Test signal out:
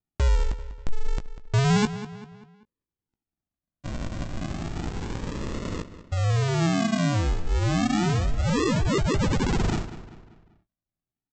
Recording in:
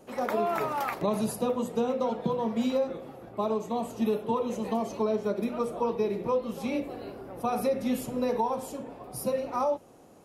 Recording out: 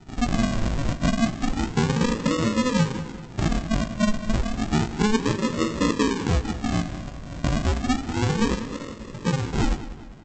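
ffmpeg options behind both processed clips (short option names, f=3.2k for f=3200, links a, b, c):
-filter_complex "[0:a]aresample=16000,acrusher=samples=29:mix=1:aa=0.000001:lfo=1:lforange=17.4:lforate=0.31,aresample=44100,asplit=2[a][b];[b]adelay=18,volume=-11dB[c];[a][c]amix=inputs=2:normalize=0,asplit=2[d][e];[e]adelay=195,lowpass=f=4.8k:p=1,volume=-13.5dB,asplit=2[f][g];[g]adelay=195,lowpass=f=4.8k:p=1,volume=0.46,asplit=2[h][i];[i]adelay=195,lowpass=f=4.8k:p=1,volume=0.46,asplit=2[j][k];[k]adelay=195,lowpass=f=4.8k:p=1,volume=0.46[l];[d][f][h][j][l]amix=inputs=5:normalize=0,volume=5.5dB"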